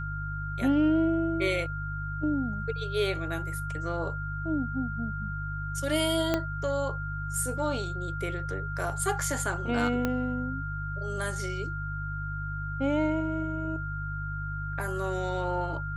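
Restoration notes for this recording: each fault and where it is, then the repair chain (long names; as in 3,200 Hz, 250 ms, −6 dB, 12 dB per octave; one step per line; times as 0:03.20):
mains hum 50 Hz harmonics 3 −35 dBFS
whistle 1,400 Hz −36 dBFS
0:06.34: click −12 dBFS
0:10.05: click −14 dBFS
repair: click removal
notch filter 1,400 Hz, Q 30
hum removal 50 Hz, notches 3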